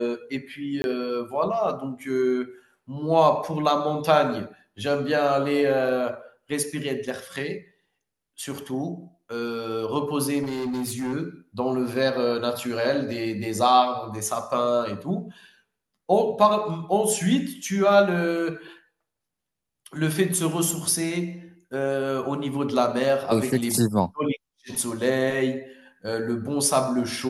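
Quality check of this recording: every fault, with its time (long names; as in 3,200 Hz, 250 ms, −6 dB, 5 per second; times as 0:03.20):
0:00.82–0:00.84: drop-out 21 ms
0:10.42–0:11.14: clipping −25 dBFS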